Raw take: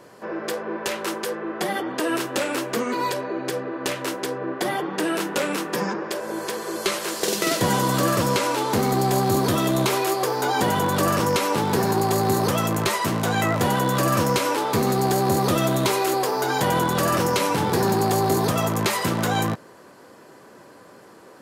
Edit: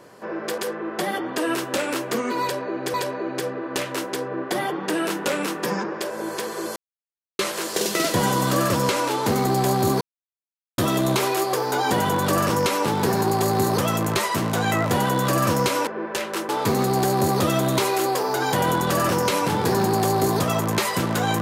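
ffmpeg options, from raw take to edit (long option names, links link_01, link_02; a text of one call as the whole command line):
ffmpeg -i in.wav -filter_complex "[0:a]asplit=7[link_01][link_02][link_03][link_04][link_05][link_06][link_07];[link_01]atrim=end=0.582[link_08];[link_02]atrim=start=1.198:end=3.562[link_09];[link_03]atrim=start=3.038:end=6.86,asetpts=PTS-STARTPTS,afade=type=out:start_time=3.818:duration=0.004:curve=hsin,apad=pad_dur=0.63[link_10];[link_04]atrim=start=6.86:end=9.48,asetpts=PTS-STARTPTS,afade=type=in:duration=0.004:curve=hsin,afade=type=out:start_time=2.616:duration=0.004:curve=hsin,apad=pad_dur=0.77[link_11];[link_05]atrim=start=9.48:end=14.572,asetpts=PTS-STARTPTS,afade=type=in:duration=0.004:curve=hsin[link_12];[link_06]atrim=start=0.578:end=1.202[link_13];[link_07]atrim=start=14.568[link_14];[link_08][link_09]acrossfade=duration=0.004:curve1=hsin:curve2=hsin[link_15];[link_10][link_11][link_12]concat=n=3:v=0:a=1[link_16];[link_15][link_16]acrossfade=duration=0.004:curve1=hsin:curve2=hsin[link_17];[link_17][link_13]acrossfade=duration=0.004:curve1=hsin:curve2=hsin[link_18];[link_18][link_14]acrossfade=duration=0.004:curve1=hsin:curve2=hsin" out.wav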